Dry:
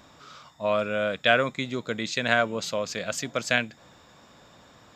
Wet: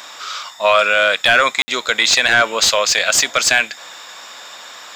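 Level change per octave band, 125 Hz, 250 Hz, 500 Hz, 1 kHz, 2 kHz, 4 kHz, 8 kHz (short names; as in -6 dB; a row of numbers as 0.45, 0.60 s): -3.0, -1.5, +7.5, +12.0, +13.0, +16.0, +20.0 dB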